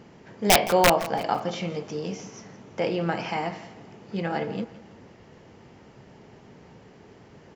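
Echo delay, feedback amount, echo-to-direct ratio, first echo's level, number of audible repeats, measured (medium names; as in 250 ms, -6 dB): 167 ms, 39%, -16.5 dB, -17.0 dB, 3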